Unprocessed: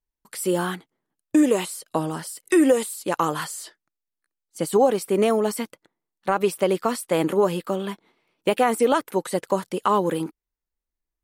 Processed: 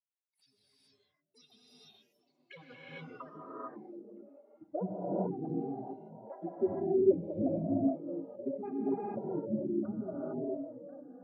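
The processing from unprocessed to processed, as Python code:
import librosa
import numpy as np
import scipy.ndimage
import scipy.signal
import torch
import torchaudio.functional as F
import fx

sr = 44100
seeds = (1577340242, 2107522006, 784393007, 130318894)

p1 = fx.bin_expand(x, sr, power=2.0)
p2 = fx.high_shelf(p1, sr, hz=5500.0, db=5.5)
p3 = fx.formant_shift(p2, sr, semitones=-5)
p4 = fx.small_body(p3, sr, hz=(370.0, 1500.0), ring_ms=45, db=12)
p5 = fx.backlash(p4, sr, play_db=-24.5)
p6 = p4 + F.gain(torch.from_numpy(p5), -5.0).numpy()
p7 = fx.env_phaser(p6, sr, low_hz=510.0, high_hz=1800.0, full_db=-20.5)
p8 = p7 + fx.echo_stepped(p7, sr, ms=334, hz=220.0, octaves=0.7, feedback_pct=70, wet_db=-9.5, dry=0)
p9 = fx.filter_sweep_bandpass(p8, sr, from_hz=6900.0, to_hz=340.0, start_s=1.92, end_s=3.66, q=7.7)
p10 = fx.granulator(p9, sr, seeds[0], grain_ms=100.0, per_s=20.0, spray_ms=21.0, spread_st=12)
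p11 = fx.air_absorb(p10, sr, metres=270.0)
p12 = fx.rev_gated(p11, sr, seeds[1], gate_ms=480, shape='rising', drr_db=-6.0)
y = F.gain(torch.from_numpy(p12), -8.5).numpy()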